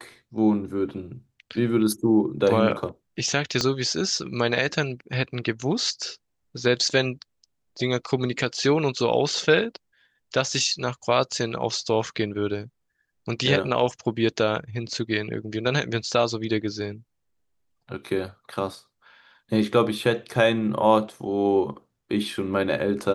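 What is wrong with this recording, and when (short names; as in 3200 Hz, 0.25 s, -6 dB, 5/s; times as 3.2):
3.61 pop -9 dBFS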